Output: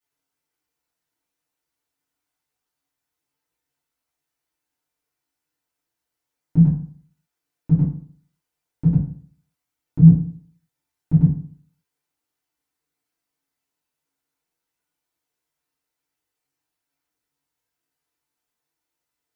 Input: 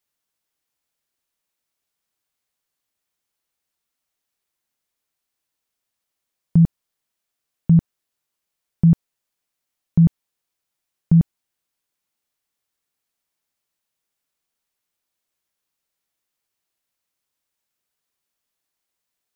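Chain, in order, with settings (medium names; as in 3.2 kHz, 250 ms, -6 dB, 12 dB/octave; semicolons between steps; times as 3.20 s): chorus voices 4, 1.1 Hz, delay 18 ms, depth 3.6 ms; FDN reverb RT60 0.5 s, low-frequency decay 1.05×, high-frequency decay 0.45×, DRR -9.5 dB; trim -6.5 dB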